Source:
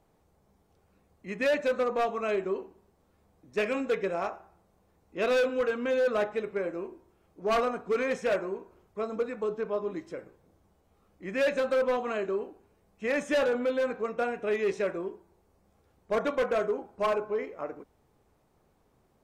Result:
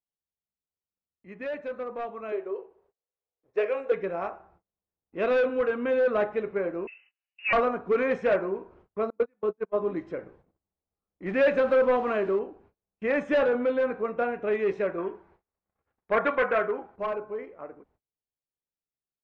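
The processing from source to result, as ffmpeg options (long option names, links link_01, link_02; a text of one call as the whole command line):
ffmpeg -i in.wav -filter_complex "[0:a]asettb=1/sr,asplit=3[link_01][link_02][link_03];[link_01]atrim=end=2.324[link_04];[link_02]atrim=start=2.32:end=3.92,asetpts=PTS-STARTPTS,afade=type=in:duration=0.004:curve=qsin,afade=type=out:start_time=1.596:duration=0.004:curve=qsin,lowshelf=frequency=330:width_type=q:width=3:gain=-9.5[link_05];[link_03]atrim=start=3.916[link_06];[link_04][link_05]acrossfade=duration=0.004:curve1=hsin:curve2=qsin[link_07];[link_07][link_06]acrossfade=duration=0.004:curve1=qsin:curve2=hsin,asettb=1/sr,asplit=3[link_08][link_09][link_10];[link_08]atrim=end=6.874[link_11];[link_09]atrim=start=6.87:end=7.53,asetpts=PTS-STARTPTS,afade=type=in:duration=0.004:curve=qsin,afade=type=out:start_time=0.656:duration=0.004:curve=qsin,lowpass=frequency=2600:width_type=q:width=0.5098,lowpass=frequency=2600:width_type=q:width=0.6013,lowpass=frequency=2600:width_type=q:width=0.9,lowpass=frequency=2600:width_type=q:width=2.563,afreqshift=-3000[link_12];[link_10]atrim=start=7.526[link_13];[link_11][link_12]acrossfade=duration=0.004:curve1=hsin:curve2=qsin[link_14];[link_14][link_13]acrossfade=duration=0.004:curve1=qsin:curve2=hsin,asettb=1/sr,asplit=3[link_15][link_16][link_17];[link_15]atrim=end=9.104[link_18];[link_16]atrim=start=9.1:end=9.76,asetpts=PTS-STARTPTS,afade=type=in:duration=0.004:curve=qsin,afade=type=out:start_time=0.656:duration=0.004:curve=qsin,agate=range=-38dB:threshold=-30dB:ratio=16:release=100:detection=peak[link_19];[link_17]atrim=start=9.756[link_20];[link_18][link_19]acrossfade=duration=0.004:curve1=hsin:curve2=qsin[link_21];[link_21][link_20]acrossfade=duration=0.004:curve1=qsin:curve2=hsin,asettb=1/sr,asplit=3[link_22][link_23][link_24];[link_22]atrim=end=11.264[link_25];[link_23]atrim=start=11.26:end=12.39,asetpts=PTS-STARTPTS,afade=type=in:duration=0.004:curve=qsin,afade=type=out:start_time=1.126:duration=0.004:curve=qsin,aeval=exprs='val(0)+0.5*0.0075*sgn(val(0))':channel_layout=same[link_26];[link_24]atrim=start=12.386[link_27];[link_25][link_26]acrossfade=duration=0.004:curve1=hsin:curve2=qsin[link_28];[link_28][link_27]acrossfade=duration=0.004:curve1=qsin:curve2=hsin,asettb=1/sr,asplit=3[link_29][link_30][link_31];[link_29]atrim=end=14.984[link_32];[link_30]atrim=start=14.98:end=16.96,asetpts=PTS-STARTPTS,afade=type=in:duration=0.004:curve=qsin,afade=type=out:start_time=1.976:duration=0.004:curve=qsin,equalizer=frequency=1800:width_type=o:width=2.1:gain=11.5[link_33];[link_31]atrim=start=16.956[link_34];[link_32][link_33]acrossfade=duration=0.004:curve1=hsin:curve2=qsin[link_35];[link_35][link_34]acrossfade=duration=0.004:curve1=qsin:curve2=hsin,lowpass=2300,agate=range=-30dB:threshold=-60dB:ratio=16:detection=peak,dynaudnorm=framelen=850:gausssize=9:maxgain=13dB,volume=-8dB" out.wav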